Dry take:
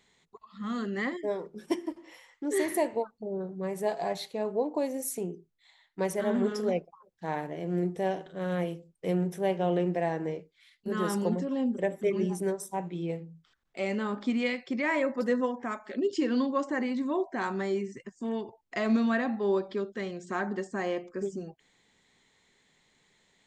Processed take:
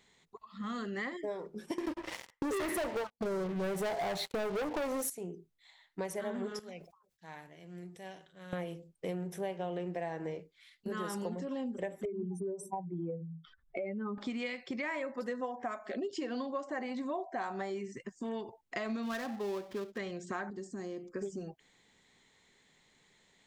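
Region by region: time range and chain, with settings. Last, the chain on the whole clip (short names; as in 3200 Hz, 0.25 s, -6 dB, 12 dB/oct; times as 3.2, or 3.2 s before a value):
1.78–5.1 high shelf 2700 Hz -8.5 dB + sample leveller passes 5
6.59–8.53 passive tone stack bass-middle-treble 5-5-5 + sustainer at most 110 dB/s
12.05–14.18 spectral contrast raised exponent 2.2 + three-band squash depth 70%
15.41–17.7 bell 730 Hz +11.5 dB 0.54 oct + notch 860 Hz, Q 7.8
19.03–19.98 switching dead time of 0.13 ms + high shelf 6800 Hz -6.5 dB
20.5–21.13 band shelf 1300 Hz -12.5 dB 2.9 oct + compressor 2:1, threshold -40 dBFS
whole clip: dynamic EQ 250 Hz, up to -5 dB, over -38 dBFS, Q 0.76; compressor, threshold -34 dBFS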